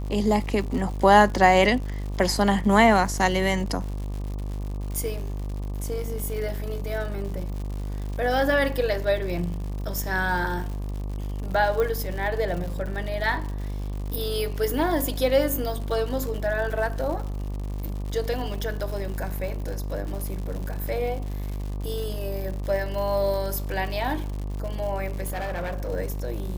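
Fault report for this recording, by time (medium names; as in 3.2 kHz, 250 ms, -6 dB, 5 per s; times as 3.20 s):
buzz 50 Hz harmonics 24 -30 dBFS
crackle 140 per s -33 dBFS
11.80 s: pop -15 dBFS
25.24–25.89 s: clipped -26 dBFS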